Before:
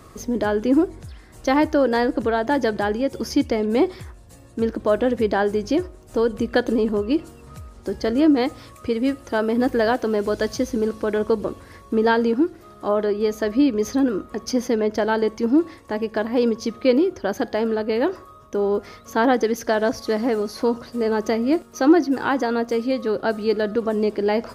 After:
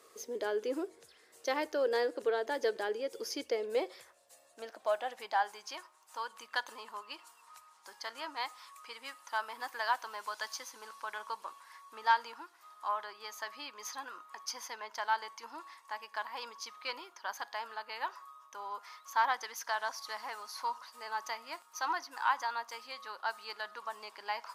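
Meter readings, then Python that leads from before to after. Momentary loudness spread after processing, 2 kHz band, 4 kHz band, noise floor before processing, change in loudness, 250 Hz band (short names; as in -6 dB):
15 LU, -9.0 dB, -8.0 dB, -46 dBFS, -15.5 dB, -30.5 dB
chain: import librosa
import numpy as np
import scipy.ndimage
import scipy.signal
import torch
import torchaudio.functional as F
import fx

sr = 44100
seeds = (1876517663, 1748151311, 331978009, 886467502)

y = fx.cheby_harmonics(x, sr, harmonics=(3,), levels_db=(-25,), full_scale_db=-4.5)
y = fx.filter_sweep_highpass(y, sr, from_hz=450.0, to_hz=960.0, start_s=3.43, end_s=5.8, q=5.2)
y = fx.tone_stack(y, sr, knobs='5-5-5')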